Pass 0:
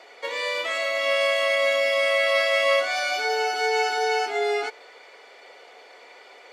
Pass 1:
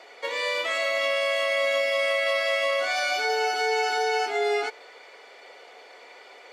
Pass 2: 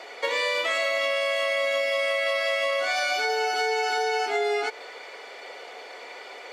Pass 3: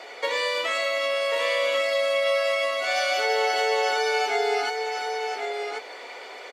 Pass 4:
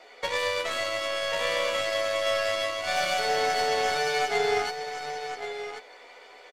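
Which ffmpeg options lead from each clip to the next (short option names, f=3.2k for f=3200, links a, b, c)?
-af "alimiter=limit=-16.5dB:level=0:latency=1:release=35"
-af "acompressor=threshold=-29dB:ratio=6,volume=6.5dB"
-filter_complex "[0:a]asplit=2[a][b];[b]adelay=16,volume=-11dB[c];[a][c]amix=inputs=2:normalize=0,aecho=1:1:1090:0.562"
-filter_complex "[0:a]aeval=exprs='0.251*(cos(1*acos(clip(val(0)/0.251,-1,1)))-cos(1*PI/2))+0.0141*(cos(3*acos(clip(val(0)/0.251,-1,1)))-cos(3*PI/2))+0.00708*(cos(5*acos(clip(val(0)/0.251,-1,1)))-cos(5*PI/2))+0.00355*(cos(6*acos(clip(val(0)/0.251,-1,1)))-cos(6*PI/2))+0.0224*(cos(7*acos(clip(val(0)/0.251,-1,1)))-cos(7*PI/2))':c=same,asplit=2[a][b];[b]adelay=12,volume=-4dB[c];[a][c]amix=inputs=2:normalize=0,volume=-2dB"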